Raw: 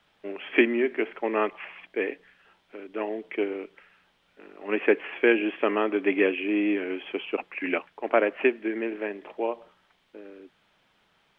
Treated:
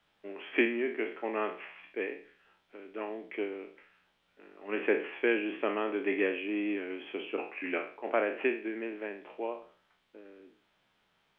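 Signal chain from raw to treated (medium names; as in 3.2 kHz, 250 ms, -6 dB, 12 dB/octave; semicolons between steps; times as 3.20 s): spectral sustain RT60 0.43 s; trim -8 dB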